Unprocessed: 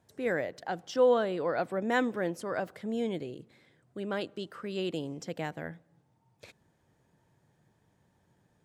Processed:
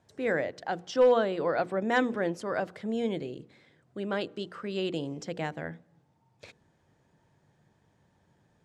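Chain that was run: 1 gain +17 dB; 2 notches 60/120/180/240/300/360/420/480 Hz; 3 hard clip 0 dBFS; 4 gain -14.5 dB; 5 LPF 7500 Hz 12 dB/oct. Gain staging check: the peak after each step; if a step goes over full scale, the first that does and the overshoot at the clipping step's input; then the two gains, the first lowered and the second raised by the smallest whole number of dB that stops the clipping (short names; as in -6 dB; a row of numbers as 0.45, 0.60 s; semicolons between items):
+3.0, +3.0, 0.0, -14.5, -14.5 dBFS; step 1, 3.0 dB; step 1 +14 dB, step 4 -11.5 dB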